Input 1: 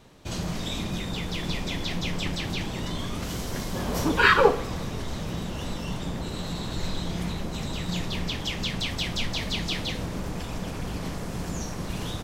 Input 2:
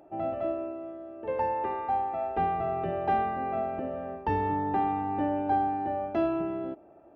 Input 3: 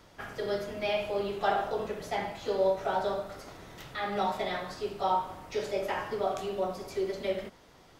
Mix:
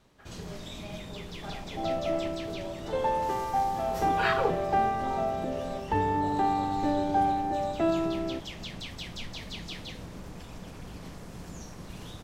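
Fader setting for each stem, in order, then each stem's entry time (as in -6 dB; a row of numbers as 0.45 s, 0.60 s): -10.5 dB, +1.0 dB, -15.5 dB; 0.00 s, 1.65 s, 0.00 s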